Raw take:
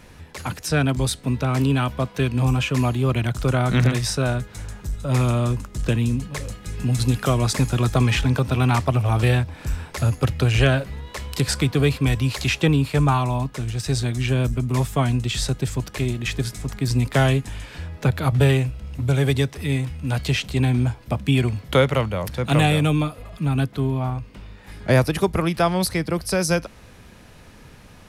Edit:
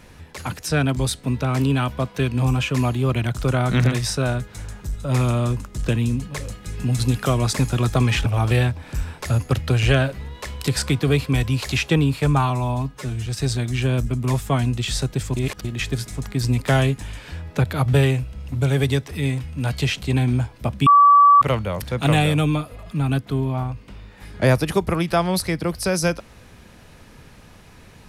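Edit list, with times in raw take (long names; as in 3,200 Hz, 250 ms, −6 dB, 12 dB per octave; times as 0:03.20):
0:08.26–0:08.98: remove
0:13.22–0:13.73: time-stretch 1.5×
0:15.83–0:16.11: reverse
0:21.33–0:21.88: beep over 1,150 Hz −8 dBFS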